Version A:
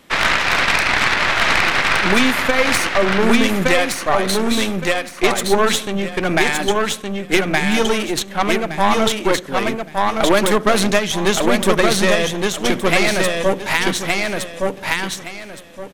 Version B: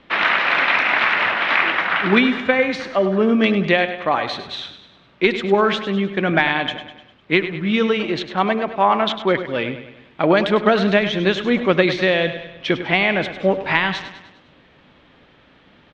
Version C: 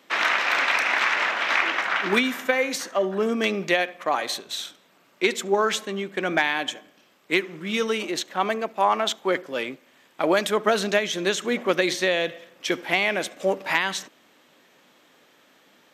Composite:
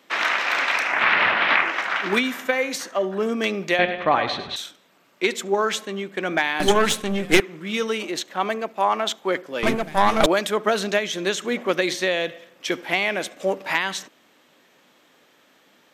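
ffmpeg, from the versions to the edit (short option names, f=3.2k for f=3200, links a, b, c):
-filter_complex "[1:a]asplit=2[a][b];[0:a]asplit=2[c][d];[2:a]asplit=5[e][f][g][h][i];[e]atrim=end=1.08[j];[a]atrim=start=0.84:end=1.77[k];[f]atrim=start=1.53:end=3.792[l];[b]atrim=start=3.788:end=4.562[m];[g]atrim=start=4.558:end=6.602[n];[c]atrim=start=6.598:end=7.402[o];[h]atrim=start=7.398:end=9.632[p];[d]atrim=start=9.628:end=10.262[q];[i]atrim=start=10.258[r];[j][k]acrossfade=d=0.24:c1=tri:c2=tri[s];[s][l]acrossfade=d=0.24:c1=tri:c2=tri[t];[t][m]acrossfade=d=0.004:c1=hsin:c2=hsin[u];[u][n]acrossfade=d=0.004:c1=hsin:c2=hsin[v];[v][o]acrossfade=d=0.004:c1=hsin:c2=hsin[w];[w][p]acrossfade=d=0.004:c1=hsin:c2=hsin[x];[x][q]acrossfade=d=0.004:c1=hsin:c2=hsin[y];[y][r]acrossfade=d=0.004:c1=hsin:c2=hsin"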